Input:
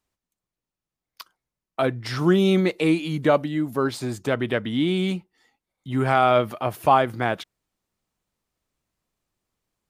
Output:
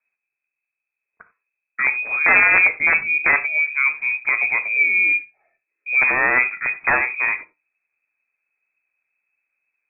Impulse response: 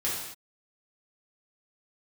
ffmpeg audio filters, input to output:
-filter_complex "[0:a]lowshelf=frequency=330:gain=10.5,aeval=exprs='(mod(2.11*val(0)+1,2)-1)/2.11':channel_layout=same,lowpass=frequency=2200:width_type=q:width=0.5098,lowpass=frequency=2200:width_type=q:width=0.6013,lowpass=frequency=2200:width_type=q:width=0.9,lowpass=frequency=2200:width_type=q:width=2.563,afreqshift=-2600,asplit=2[link_01][link_02];[1:a]atrim=start_sample=2205,afade=type=out:start_time=0.15:duration=0.01,atrim=end_sample=7056[link_03];[link_02][link_03]afir=irnorm=-1:irlink=0,volume=-15dB[link_04];[link_01][link_04]amix=inputs=2:normalize=0,flanger=delay=7.8:depth=2:regen=-78:speed=0.28:shape=triangular,volume=1.5dB"

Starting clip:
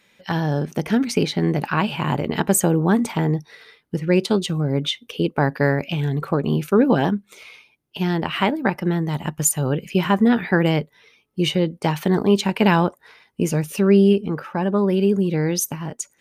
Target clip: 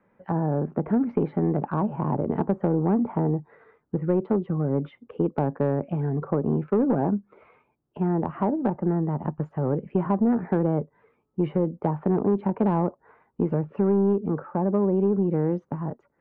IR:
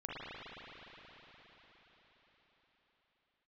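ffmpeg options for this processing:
-filter_complex "[0:a]lowpass=frequency=1300:width=0.5412,lowpass=frequency=1300:width=1.3066,asoftclip=type=tanh:threshold=-10dB,acrossover=split=190|1000[link_01][link_02][link_03];[link_01]acompressor=threshold=-31dB:ratio=4[link_04];[link_02]acompressor=threshold=-20dB:ratio=4[link_05];[link_03]acompressor=threshold=-46dB:ratio=4[link_06];[link_04][link_05][link_06]amix=inputs=3:normalize=0"

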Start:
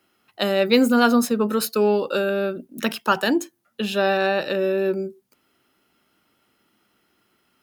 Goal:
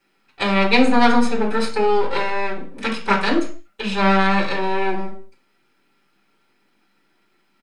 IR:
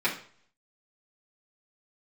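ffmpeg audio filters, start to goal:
-filter_complex "[0:a]aeval=exprs='max(val(0),0)':channel_layout=same,aresample=22050,aresample=44100[link_01];[1:a]atrim=start_sample=2205,afade=type=out:start_time=0.29:duration=0.01,atrim=end_sample=13230[link_02];[link_01][link_02]afir=irnorm=-1:irlink=0,acrusher=bits=11:mix=0:aa=0.000001,volume=-4.5dB"

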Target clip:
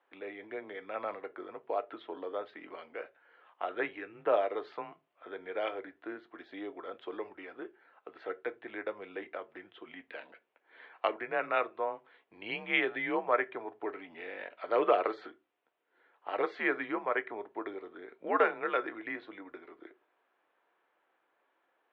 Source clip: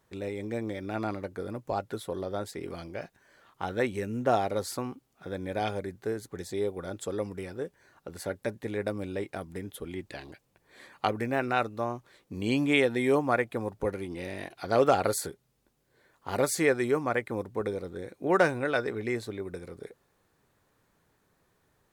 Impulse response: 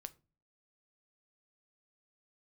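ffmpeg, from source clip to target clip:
-filter_complex "[1:a]atrim=start_sample=2205,asetrate=61740,aresample=44100[link_01];[0:a][link_01]afir=irnorm=-1:irlink=0,highpass=frequency=550:width_type=q:width=0.5412,highpass=frequency=550:width_type=q:width=1.307,lowpass=frequency=3200:width_type=q:width=0.5176,lowpass=frequency=3200:width_type=q:width=0.7071,lowpass=frequency=3200:width_type=q:width=1.932,afreqshift=-100,volume=7.5dB"

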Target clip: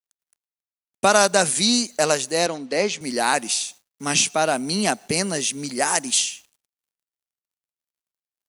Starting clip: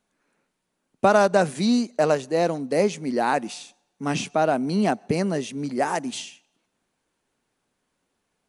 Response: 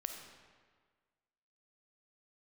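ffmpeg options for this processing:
-filter_complex "[0:a]crystalizer=i=9.5:c=0,acrusher=bits=7:mix=0:aa=0.5,asettb=1/sr,asplit=3[link_01][link_02][link_03];[link_01]atrim=end=2.464[link_04];[link_02]atrim=start=2.46:end=3.01,asetpts=PTS-STARTPTS,afade=type=in:duration=0.004:curve=qsin,afade=type=out:start_time=0.546:duration=0.004:curve=qsin,highpass=180,lowpass=4100[link_05];[link_03]atrim=start=3.006[link_06];[link_04][link_05]acrossfade=duration=0.004:curve1=hsin:curve2=qsin[link_07];[link_07][link_06]acrossfade=duration=0.004:curve1=qsin:curve2=hsin,volume=-3dB"

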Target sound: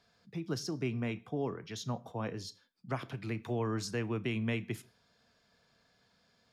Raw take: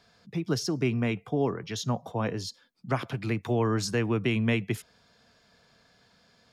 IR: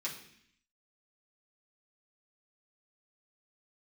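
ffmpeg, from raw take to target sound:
-filter_complex "[0:a]asplit=2[link_01][link_02];[1:a]atrim=start_sample=2205,atrim=end_sample=6174,adelay=28[link_03];[link_02][link_03]afir=irnorm=-1:irlink=0,volume=-17.5dB[link_04];[link_01][link_04]amix=inputs=2:normalize=0,volume=-8dB"

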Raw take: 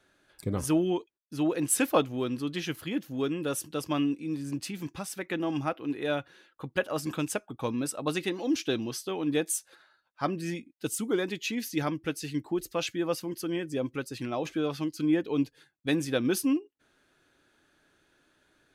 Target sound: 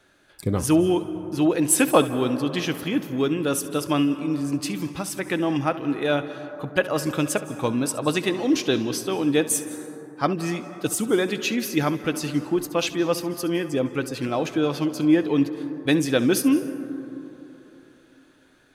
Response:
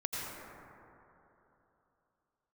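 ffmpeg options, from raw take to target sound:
-filter_complex "[0:a]asplit=2[link_01][link_02];[1:a]atrim=start_sample=2205,asetrate=41895,aresample=44100,adelay=68[link_03];[link_02][link_03]afir=irnorm=-1:irlink=0,volume=-15.5dB[link_04];[link_01][link_04]amix=inputs=2:normalize=0,volume=7dB"

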